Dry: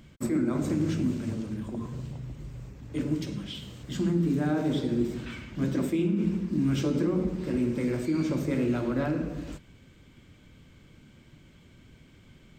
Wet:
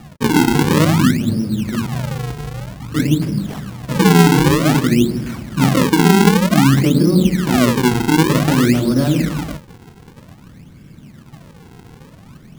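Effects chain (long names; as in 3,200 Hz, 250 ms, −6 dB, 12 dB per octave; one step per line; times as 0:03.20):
parametric band 170 Hz +10 dB 1.7 octaves
sample-and-hold swept by an LFO 42×, swing 160% 0.53 Hz
level +7 dB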